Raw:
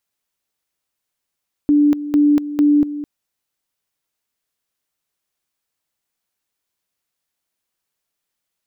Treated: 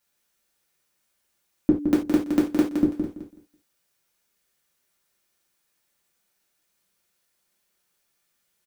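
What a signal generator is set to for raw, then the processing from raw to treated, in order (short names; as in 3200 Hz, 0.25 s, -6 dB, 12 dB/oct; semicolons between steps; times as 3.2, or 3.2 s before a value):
two-level tone 293 Hz -9.5 dBFS, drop 13.5 dB, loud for 0.24 s, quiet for 0.21 s, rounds 3
on a send: feedback echo 0.166 s, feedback 22%, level -7 dB; on the sum: non-linear reverb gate 0.11 s falling, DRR -4.5 dB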